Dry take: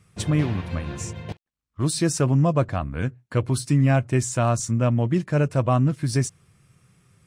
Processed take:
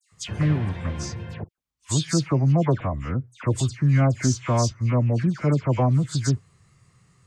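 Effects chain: formant shift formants -3 st; dispersion lows, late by 0.12 s, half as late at 2200 Hz

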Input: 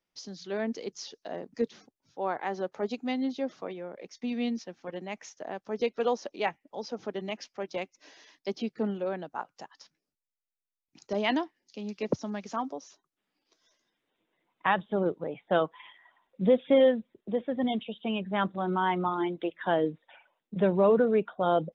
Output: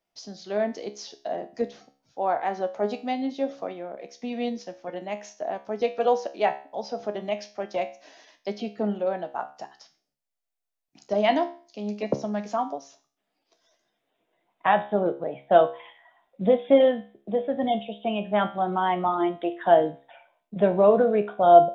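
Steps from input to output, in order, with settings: bell 680 Hz +11.5 dB 0.41 oct; resonator 69 Hz, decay 0.4 s, harmonics all, mix 70%; gain +7.5 dB

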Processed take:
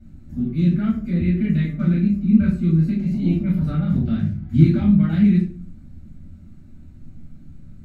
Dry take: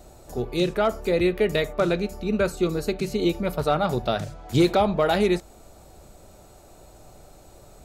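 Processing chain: EQ curve 120 Hz 0 dB, 250 Hz +9 dB, 440 Hz -24 dB, 970 Hz -23 dB, 1700 Hz -7 dB, 7600 Hz -24 dB; 2.95–4.1 transient shaper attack -11 dB, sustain +3 dB; reverb RT60 0.40 s, pre-delay 3 ms, DRR -7.5 dB; gain -8.5 dB

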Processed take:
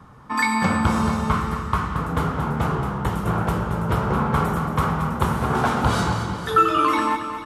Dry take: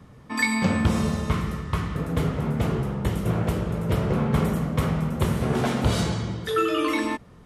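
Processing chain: band shelf 1100 Hz +10 dB 1.2 oct; feedback echo 0.225 s, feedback 58%, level -10 dB

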